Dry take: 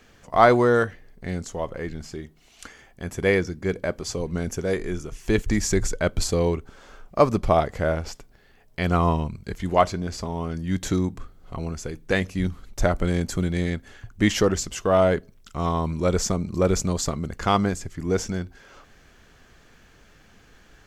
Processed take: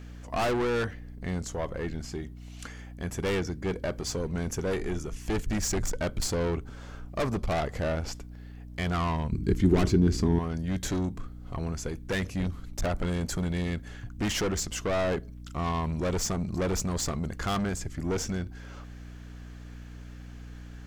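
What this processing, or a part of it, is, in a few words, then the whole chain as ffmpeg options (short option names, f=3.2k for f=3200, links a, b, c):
valve amplifier with mains hum: -filter_complex "[0:a]aeval=exprs='(tanh(17.8*val(0)+0.25)-tanh(0.25))/17.8':c=same,aeval=exprs='val(0)+0.00794*(sin(2*PI*60*n/s)+sin(2*PI*2*60*n/s)/2+sin(2*PI*3*60*n/s)/3+sin(2*PI*4*60*n/s)/4+sin(2*PI*5*60*n/s)/5)':c=same,asettb=1/sr,asplit=3[a][b][c];[a]atrim=end=9.324[d];[b]atrim=start=9.32:end=10.39,asetpts=PTS-STARTPTS,afade=t=in:d=0.004:c=qsin,afade=t=out:st=1.066:d=0.004:c=qsin,lowshelf=f=460:t=q:w=3:g=8[e];[c]atrim=start=10.386[f];[d][e]acrossfade=d=0.004:c1=hsin:c2=qsin[g];[g][f]acrossfade=d=0.004:c1=qsin:c2=hsin"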